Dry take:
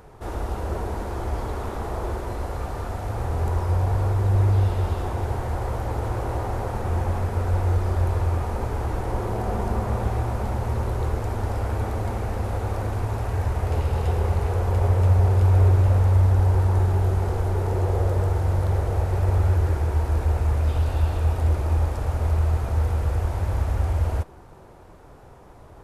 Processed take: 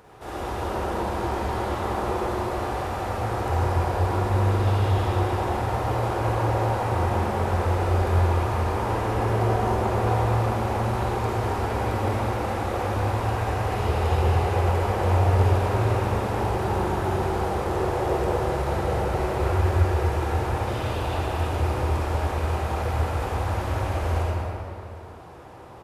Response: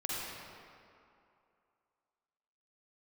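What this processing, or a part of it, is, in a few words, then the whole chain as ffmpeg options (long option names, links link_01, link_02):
stadium PA: -filter_complex "[0:a]highpass=frequency=160:poles=1,equalizer=frequency=3100:width_type=o:width=1.4:gain=3.5,aecho=1:1:189.5|230.3:0.251|0.251[link_01];[1:a]atrim=start_sample=2205[link_02];[link_01][link_02]afir=irnorm=-1:irlink=0"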